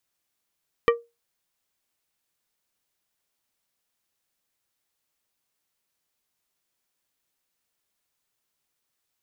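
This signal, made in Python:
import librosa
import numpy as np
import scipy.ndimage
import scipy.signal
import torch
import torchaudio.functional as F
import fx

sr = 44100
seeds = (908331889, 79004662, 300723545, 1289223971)

y = fx.strike_glass(sr, length_s=0.89, level_db=-12.0, body='plate', hz=469.0, decay_s=0.23, tilt_db=4, modes=5)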